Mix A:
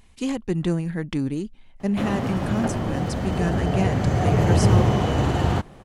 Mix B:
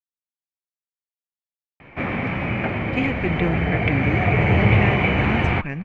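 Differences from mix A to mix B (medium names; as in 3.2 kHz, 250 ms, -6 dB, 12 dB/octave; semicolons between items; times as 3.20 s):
speech: entry +2.75 s; master: add resonant low-pass 2.3 kHz, resonance Q 11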